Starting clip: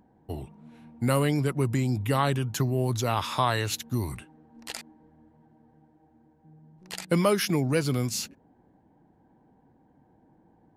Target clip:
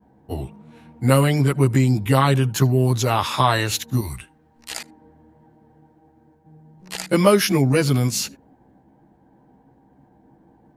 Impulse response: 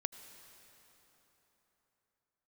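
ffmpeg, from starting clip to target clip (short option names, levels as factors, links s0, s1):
-filter_complex "[0:a]agate=range=0.0224:threshold=0.001:ratio=3:detection=peak,asettb=1/sr,asplit=3[s0][s1][s2];[s0]atrim=end=3.994[s3];[s1]atrim=start=3.99:end=4.71,asetpts=PTS-STARTPTS,afade=t=in:d=0.004:c=qsin,afade=t=out:st=0.716:d=0.004:c=qsin,equalizer=f=370:w=0.33:g=-9.5[s4];[s2]atrim=start=4.706[s5];[s3][s4]acrossfade=d=0.004:c1=hsin:c2=qsin[s6];[s6][s5]acrossfade=d=0.004:c1=qsin:c2=hsin,asplit=2[s7][s8];[1:a]atrim=start_sample=2205,atrim=end_sample=3528,adelay=15[s9];[s8][s9]afir=irnorm=-1:irlink=0,volume=2.37[s10];[s7][s10]amix=inputs=2:normalize=0"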